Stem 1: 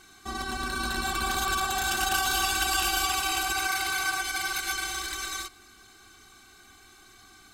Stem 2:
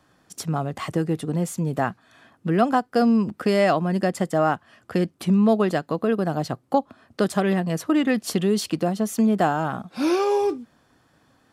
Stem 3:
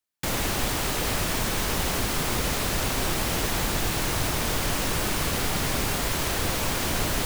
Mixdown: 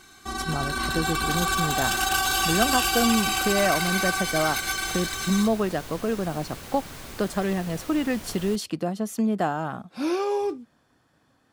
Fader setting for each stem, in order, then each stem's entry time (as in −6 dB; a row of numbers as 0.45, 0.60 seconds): +2.5, −4.5, −14.5 decibels; 0.00, 0.00, 1.30 seconds